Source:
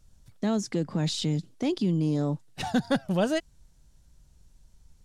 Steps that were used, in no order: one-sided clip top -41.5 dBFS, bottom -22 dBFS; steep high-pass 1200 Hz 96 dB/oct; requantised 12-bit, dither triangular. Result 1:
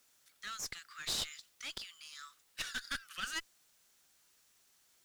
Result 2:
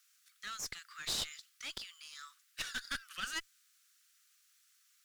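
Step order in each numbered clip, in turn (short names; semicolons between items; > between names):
steep high-pass > one-sided clip > requantised; requantised > steep high-pass > one-sided clip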